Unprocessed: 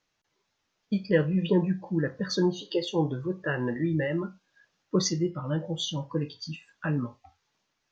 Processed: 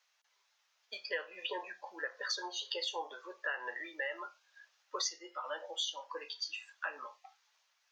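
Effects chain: Bessel high-pass 950 Hz, order 6; compression 4:1, threshold -38 dBFS, peak gain reduction 11.5 dB; trim +3.5 dB

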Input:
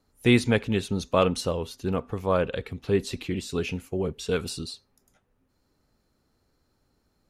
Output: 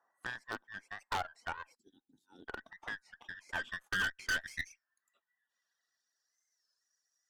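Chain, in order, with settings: every band turned upside down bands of 2 kHz; 1.75–2.48 s: elliptic band-stop 310–3900 Hz, stop band 40 dB; reverb removal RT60 0.98 s; graphic EQ 250/2000/4000 Hz +7/-12/-7 dB; 3.49–4.62 s: waveshaping leveller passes 2; compression 3:1, threshold -45 dBFS, peak gain reduction 17.5 dB; band-pass sweep 920 Hz -> 5.5 kHz, 3.31–6.48 s; wavefolder -39.5 dBFS; Chebyshev shaper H 2 -9 dB, 7 -25 dB, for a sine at -39.5 dBFS; warped record 33 1/3 rpm, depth 160 cents; trim +12 dB

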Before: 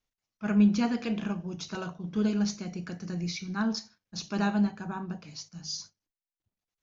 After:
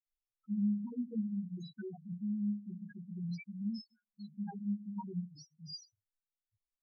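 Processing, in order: compression 2.5:1, threshold -31 dBFS, peak gain reduction 9.5 dB; chorus voices 4, 0.75 Hz, delay 17 ms, depth 2.4 ms; loudest bins only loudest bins 2; phase dispersion lows, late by 66 ms, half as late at 1.7 kHz

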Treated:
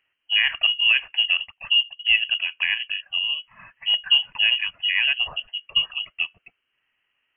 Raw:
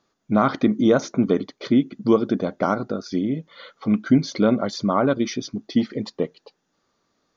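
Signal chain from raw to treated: 1.50–2.05 s: resonances exaggerated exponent 1.5; frequency inversion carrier 3.1 kHz; trim -2 dB

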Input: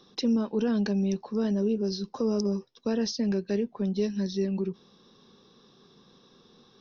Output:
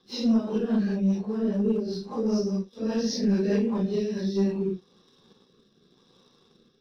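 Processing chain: phase randomisation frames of 200 ms; 0.58–2.26 s: low-pass 2.3 kHz 6 dB/octave; waveshaping leveller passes 1; rotary cabinet horn 5 Hz, later 0.9 Hz, at 3.92 s; 3.23–3.86 s: level flattener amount 50%

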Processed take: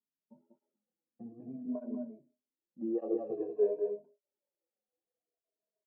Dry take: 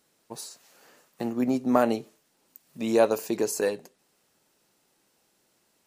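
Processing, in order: drifting ripple filter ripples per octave 1.6, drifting -0.52 Hz, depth 24 dB; gate -46 dBFS, range -16 dB; bass shelf 280 Hz -12 dB; chord resonator C#2 minor, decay 0.24 s; delay 192 ms -5.5 dB; low-pass sweep 230 Hz -> 490 Hz, 2.10–3.63 s; cabinet simulation 140–3300 Hz, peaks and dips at 150 Hz +4 dB, 640 Hz +8 dB, 1.6 kHz -4 dB; cancelling through-zero flanger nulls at 0.83 Hz, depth 6.5 ms; trim -2 dB

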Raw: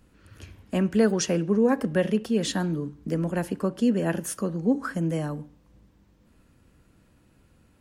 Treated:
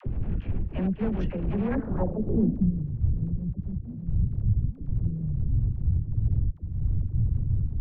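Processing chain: wind noise 200 Hz -28 dBFS; treble shelf 3.6 kHz -9.5 dB; in parallel at -2.5 dB: upward compressor, threshold -24 dBFS; on the sum: RIAA curve playback; reverse; compression 16:1, threshold -20 dBFS, peak gain reduction 30 dB; reverse; overload inside the chain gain 21 dB; thinning echo 754 ms, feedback 61%, high-pass 170 Hz, level -6 dB; low-pass sweep 2.7 kHz -> 110 Hz, 1.64–2.75 s; transient shaper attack +2 dB, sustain -11 dB; gate with hold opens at -34 dBFS; phase dispersion lows, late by 65 ms, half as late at 510 Hz; trim -1.5 dB

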